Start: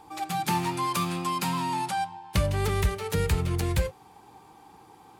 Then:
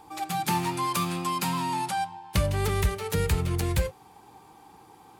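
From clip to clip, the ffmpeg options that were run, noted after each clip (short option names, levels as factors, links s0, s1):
-af "highshelf=f=9600:g=4"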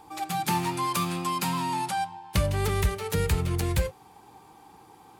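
-af anull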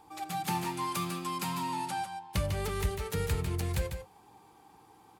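-af "aecho=1:1:148:0.422,volume=0.473"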